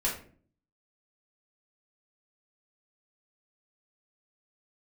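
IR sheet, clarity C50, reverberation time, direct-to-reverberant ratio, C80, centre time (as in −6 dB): 7.0 dB, 0.45 s, −5.5 dB, 12.0 dB, 28 ms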